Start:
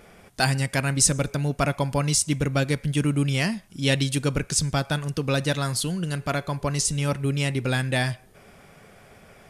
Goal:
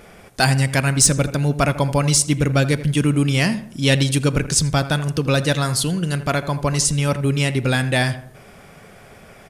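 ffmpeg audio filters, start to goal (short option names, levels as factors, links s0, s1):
-filter_complex "[0:a]asplit=2[s0][s1];[s1]adelay=82,lowpass=f=1700:p=1,volume=0.224,asplit=2[s2][s3];[s3]adelay=82,lowpass=f=1700:p=1,volume=0.45,asplit=2[s4][s5];[s5]adelay=82,lowpass=f=1700:p=1,volume=0.45,asplit=2[s6][s7];[s7]adelay=82,lowpass=f=1700:p=1,volume=0.45[s8];[s0][s2][s4][s6][s8]amix=inputs=5:normalize=0,acontrast=47"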